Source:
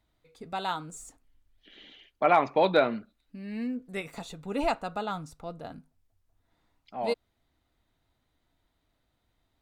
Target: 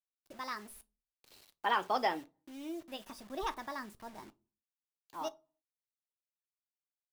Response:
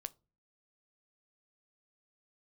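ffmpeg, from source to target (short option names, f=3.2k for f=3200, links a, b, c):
-filter_complex "[0:a]asetrate=59535,aresample=44100,acrusher=bits=7:mix=0:aa=0.000001[a];[1:a]atrim=start_sample=2205[b];[a][b]afir=irnorm=-1:irlink=0,volume=-5dB"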